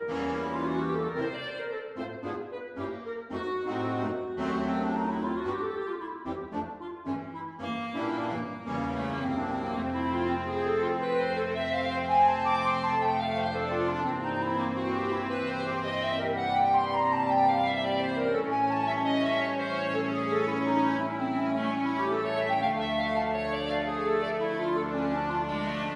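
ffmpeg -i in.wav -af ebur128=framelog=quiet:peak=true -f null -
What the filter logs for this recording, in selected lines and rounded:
Integrated loudness:
  I:         -29.2 LUFS
  Threshold: -39.2 LUFS
Loudness range:
  LRA:         7.0 LU
  Threshold: -49.1 LUFS
  LRA low:   -33.8 LUFS
  LRA high:  -26.8 LUFS
True peak:
  Peak:      -12.8 dBFS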